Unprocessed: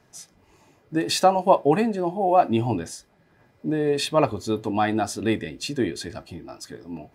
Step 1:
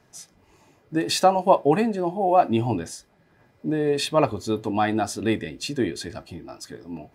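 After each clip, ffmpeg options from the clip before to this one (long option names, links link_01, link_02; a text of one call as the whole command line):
ffmpeg -i in.wav -af anull out.wav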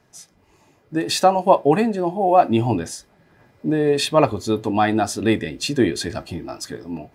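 ffmpeg -i in.wav -af "dynaudnorm=framelen=420:gausssize=5:maxgain=10.5dB" out.wav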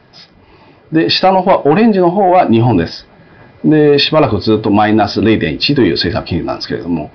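ffmpeg -i in.wav -af "aresample=11025,asoftclip=type=tanh:threshold=-9dB,aresample=44100,alimiter=level_in=15dB:limit=-1dB:release=50:level=0:latency=1,volume=-1dB" out.wav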